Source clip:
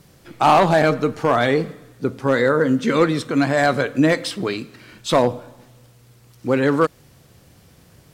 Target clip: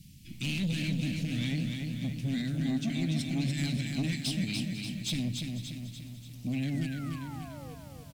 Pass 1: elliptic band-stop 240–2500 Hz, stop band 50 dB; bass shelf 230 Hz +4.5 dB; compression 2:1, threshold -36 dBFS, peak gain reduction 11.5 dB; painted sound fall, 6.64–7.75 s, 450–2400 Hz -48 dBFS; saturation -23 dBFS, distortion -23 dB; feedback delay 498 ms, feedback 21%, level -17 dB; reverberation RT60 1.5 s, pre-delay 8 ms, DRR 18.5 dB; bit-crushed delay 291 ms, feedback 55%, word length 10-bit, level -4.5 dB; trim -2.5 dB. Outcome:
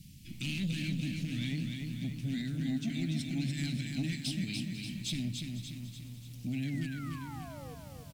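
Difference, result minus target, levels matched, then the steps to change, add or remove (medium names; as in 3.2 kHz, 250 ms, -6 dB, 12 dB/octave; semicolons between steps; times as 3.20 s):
compression: peak gain reduction +4.5 dB
change: compression 2:1, threshold -27 dBFS, peak gain reduction 7 dB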